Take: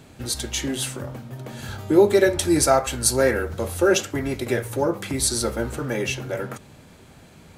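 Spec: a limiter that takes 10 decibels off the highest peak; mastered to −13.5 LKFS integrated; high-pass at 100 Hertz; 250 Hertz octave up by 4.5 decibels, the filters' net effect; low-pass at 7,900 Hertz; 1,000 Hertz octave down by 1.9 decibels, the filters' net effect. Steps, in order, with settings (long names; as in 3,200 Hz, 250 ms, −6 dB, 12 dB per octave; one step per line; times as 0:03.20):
high-pass filter 100 Hz
low-pass filter 7,900 Hz
parametric band 250 Hz +7 dB
parametric band 1,000 Hz −3.5 dB
level +10.5 dB
brickwall limiter −2 dBFS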